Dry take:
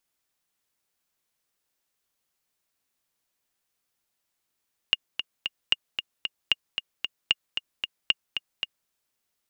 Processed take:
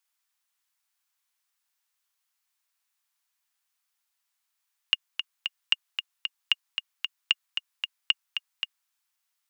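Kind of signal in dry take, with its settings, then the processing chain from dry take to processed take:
metronome 227 bpm, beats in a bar 3, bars 5, 2.84 kHz, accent 8 dB -6.5 dBFS
inverse Chebyshev high-pass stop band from 250 Hz, stop band 60 dB

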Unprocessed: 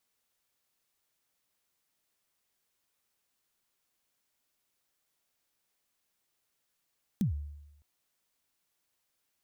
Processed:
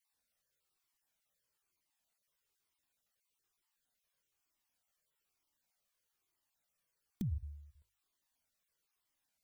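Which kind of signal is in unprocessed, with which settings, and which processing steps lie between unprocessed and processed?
kick drum length 0.61 s, from 230 Hz, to 73 Hz, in 115 ms, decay 0.94 s, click on, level -23 dB
random holes in the spectrogram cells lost 22%; hum notches 50/100 Hz; Shepard-style flanger falling 1.1 Hz

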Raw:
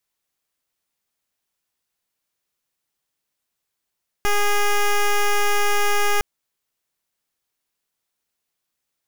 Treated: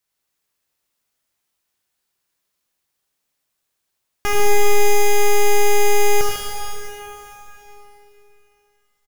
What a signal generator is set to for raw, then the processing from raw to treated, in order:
pulse 411 Hz, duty 10% -17.5 dBFS 1.96 s
on a send: multi-tap echo 80/102/148 ms -9/-10.5/-7.5 dB; on the sum: plate-style reverb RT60 3.5 s, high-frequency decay 0.95×, DRR 0.5 dB

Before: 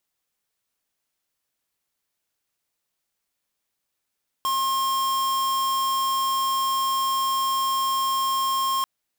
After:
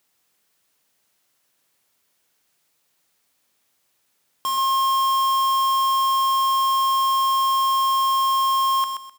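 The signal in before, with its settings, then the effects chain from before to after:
tone square 1.07 kHz -23.5 dBFS 4.39 s
companding laws mixed up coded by mu; high-pass 93 Hz 12 dB/octave; on a send: feedback delay 128 ms, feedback 27%, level -7 dB

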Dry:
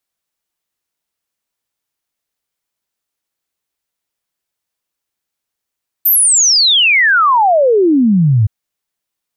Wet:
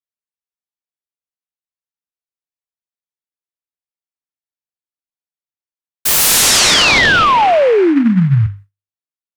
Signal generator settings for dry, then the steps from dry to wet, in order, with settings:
log sweep 14 kHz -> 100 Hz 2.42 s -7 dBFS
hum notches 50/100/150/200/250/300 Hz; gate with hold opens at -25 dBFS; delay time shaken by noise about 1.5 kHz, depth 0.049 ms

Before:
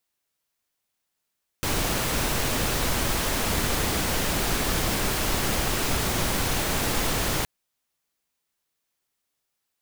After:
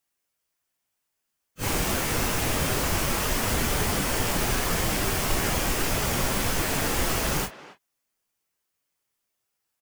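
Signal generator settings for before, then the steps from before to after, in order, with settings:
noise pink, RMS -25 dBFS 5.82 s
phase randomisation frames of 100 ms; peaking EQ 3.9 kHz -4.5 dB 0.39 oct; speakerphone echo 270 ms, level -15 dB

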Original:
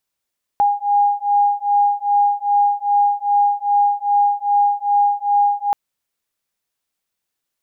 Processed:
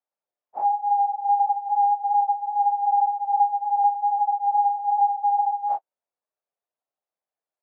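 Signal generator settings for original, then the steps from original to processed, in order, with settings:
beating tones 815 Hz, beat 2.5 Hz, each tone -16.5 dBFS 5.13 s
phase randomisation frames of 100 ms; compression 2:1, threshold -16 dBFS; band-pass filter 650 Hz, Q 2.1

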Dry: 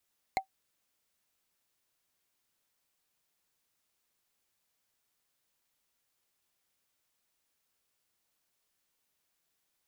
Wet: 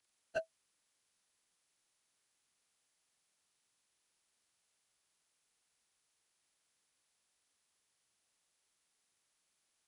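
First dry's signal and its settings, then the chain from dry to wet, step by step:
wood hit, lowest mode 769 Hz, decay 0.10 s, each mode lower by 4 dB, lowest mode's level -21 dB
frequency axis rescaled in octaves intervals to 85%

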